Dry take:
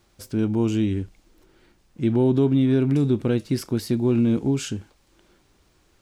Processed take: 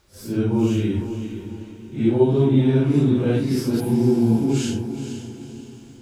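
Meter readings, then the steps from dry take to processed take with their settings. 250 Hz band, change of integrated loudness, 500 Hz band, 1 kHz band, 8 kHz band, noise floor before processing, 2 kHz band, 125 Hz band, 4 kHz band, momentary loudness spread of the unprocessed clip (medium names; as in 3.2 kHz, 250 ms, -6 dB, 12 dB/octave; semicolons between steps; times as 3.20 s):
+2.0 dB, +2.0 dB, +3.0 dB, +4.0 dB, +2.0 dB, -62 dBFS, +2.5 dB, +3.0 dB, +2.0 dB, 11 LU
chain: phase randomisation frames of 200 ms; spectral replace 3.82–4.43 s, 580–8400 Hz after; echo that smears into a reverb 475 ms, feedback 43%, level -9.5 dB; trim +2 dB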